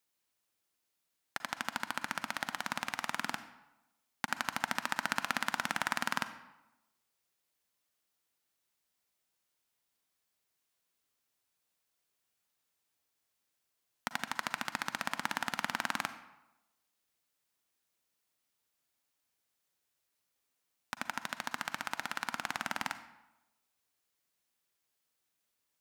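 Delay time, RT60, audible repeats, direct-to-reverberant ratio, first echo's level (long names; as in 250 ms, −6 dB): no echo audible, 0.95 s, no echo audible, 11.0 dB, no echo audible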